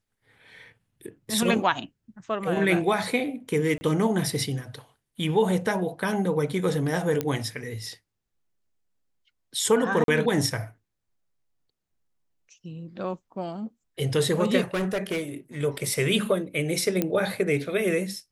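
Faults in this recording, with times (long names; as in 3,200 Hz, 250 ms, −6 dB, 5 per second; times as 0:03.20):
0:03.78–0:03.81: drop-out 30 ms
0:07.21: click −12 dBFS
0:10.04–0:10.08: drop-out 42 ms
0:14.74–0:15.21: clipping −23 dBFS
0:17.02: click −10 dBFS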